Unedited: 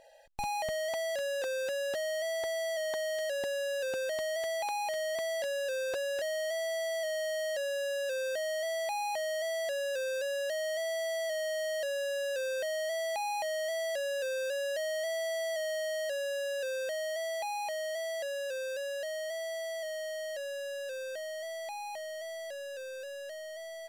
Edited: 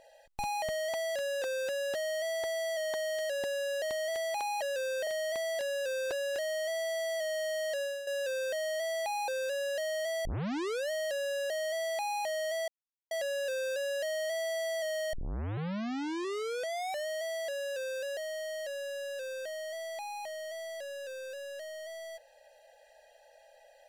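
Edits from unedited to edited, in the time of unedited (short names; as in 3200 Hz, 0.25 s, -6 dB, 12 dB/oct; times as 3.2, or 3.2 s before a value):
3.82–4.1 cut
7.65–7.9 fade out, to -10 dB
9.11–10 cut
10.97 tape start 0.66 s
12.22–12.67 move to 4.9
13.85 insert silence 0.43 s
15.87 tape start 1.94 s
18.91–19.87 cut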